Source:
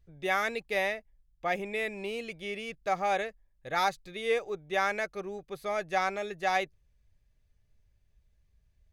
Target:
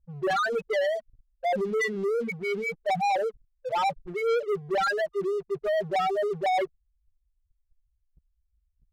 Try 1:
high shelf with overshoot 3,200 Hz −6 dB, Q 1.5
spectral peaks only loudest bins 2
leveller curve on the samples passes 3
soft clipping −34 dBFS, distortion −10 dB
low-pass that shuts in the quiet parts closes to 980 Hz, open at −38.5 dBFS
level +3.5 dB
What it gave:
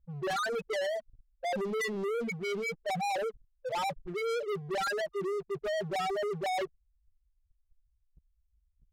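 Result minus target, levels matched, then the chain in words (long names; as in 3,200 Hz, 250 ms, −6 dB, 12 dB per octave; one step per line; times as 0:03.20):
soft clipping: distortion +13 dB
high shelf with overshoot 3,200 Hz −6 dB, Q 1.5
spectral peaks only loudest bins 2
leveller curve on the samples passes 3
soft clipping −23 dBFS, distortion −24 dB
low-pass that shuts in the quiet parts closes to 980 Hz, open at −38.5 dBFS
level +3.5 dB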